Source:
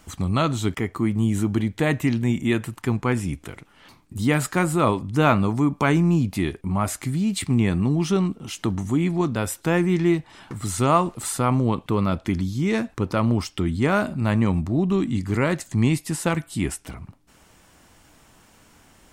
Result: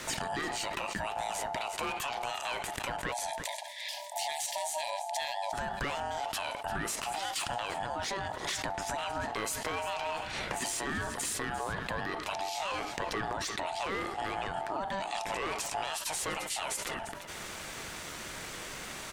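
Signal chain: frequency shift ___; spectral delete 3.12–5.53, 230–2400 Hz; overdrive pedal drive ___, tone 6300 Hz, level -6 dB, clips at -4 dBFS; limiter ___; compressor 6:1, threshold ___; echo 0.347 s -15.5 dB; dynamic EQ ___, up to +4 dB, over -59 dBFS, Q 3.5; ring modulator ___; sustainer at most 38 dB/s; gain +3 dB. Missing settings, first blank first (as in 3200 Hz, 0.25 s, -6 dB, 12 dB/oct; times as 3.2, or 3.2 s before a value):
-190 Hz, 22 dB, -15 dBFS, -34 dBFS, 350 Hz, 780 Hz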